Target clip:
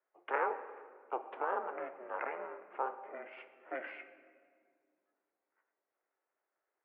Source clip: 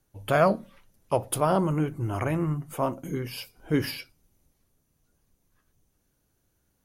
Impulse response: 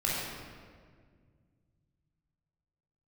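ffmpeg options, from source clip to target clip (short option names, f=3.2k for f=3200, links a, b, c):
-filter_complex "[0:a]alimiter=limit=-16.5dB:level=0:latency=1:release=232,aderivative,aeval=exprs='val(0)*sin(2*PI*200*n/s)':c=same,adynamicsmooth=sensitivity=2:basefreq=1.3k,asplit=2[a][b];[1:a]atrim=start_sample=2205[c];[b][c]afir=irnorm=-1:irlink=0,volume=-18dB[d];[a][d]amix=inputs=2:normalize=0,highpass=f=290:t=q:w=0.5412,highpass=f=290:t=q:w=1.307,lowpass=f=2.3k:t=q:w=0.5176,lowpass=f=2.3k:t=q:w=0.7071,lowpass=f=2.3k:t=q:w=1.932,afreqshift=53,volume=17dB"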